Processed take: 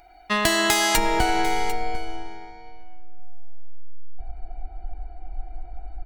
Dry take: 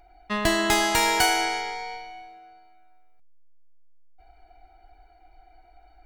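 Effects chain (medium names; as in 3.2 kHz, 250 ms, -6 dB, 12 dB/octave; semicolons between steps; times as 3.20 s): tilt EQ +1.5 dB/octave, from 0.96 s -3.5 dB/octave; compression 6:1, threshold -22 dBFS, peak gain reduction 8.5 dB; delay 747 ms -15 dB; trim +5.5 dB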